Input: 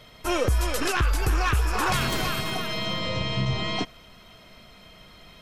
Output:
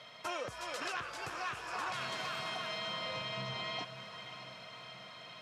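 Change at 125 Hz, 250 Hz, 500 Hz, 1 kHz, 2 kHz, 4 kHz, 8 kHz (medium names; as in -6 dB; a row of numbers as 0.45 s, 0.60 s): -23.0 dB, -19.5 dB, -12.5 dB, -10.5 dB, -10.5 dB, -10.0 dB, -15.5 dB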